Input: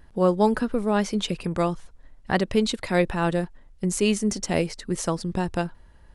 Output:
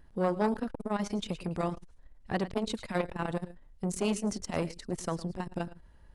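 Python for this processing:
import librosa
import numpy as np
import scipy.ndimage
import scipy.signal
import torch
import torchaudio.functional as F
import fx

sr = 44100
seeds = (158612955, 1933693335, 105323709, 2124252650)

p1 = np.clip(x, -10.0 ** (-22.0 / 20.0), 10.0 ** (-22.0 / 20.0))
p2 = x + F.gain(torch.from_numpy(p1), -11.5).numpy()
p3 = fx.low_shelf(p2, sr, hz=460.0, db=2.5)
p4 = p3 + 10.0 ** (-16.0 / 20.0) * np.pad(p3, (int(108 * sr / 1000.0), 0))[:len(p3)]
p5 = fx.transformer_sat(p4, sr, knee_hz=660.0)
y = F.gain(torch.from_numpy(p5), -8.5).numpy()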